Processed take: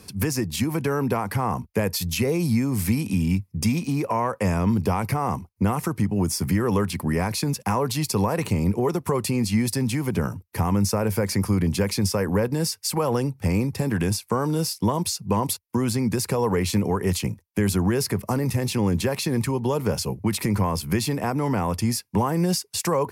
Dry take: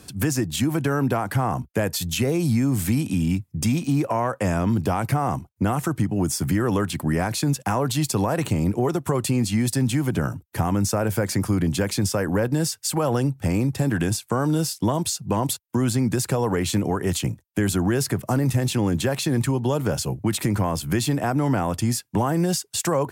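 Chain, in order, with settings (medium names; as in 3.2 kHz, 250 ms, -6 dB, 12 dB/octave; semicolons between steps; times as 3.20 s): rippled EQ curve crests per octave 0.86, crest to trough 6 dB; trim -1 dB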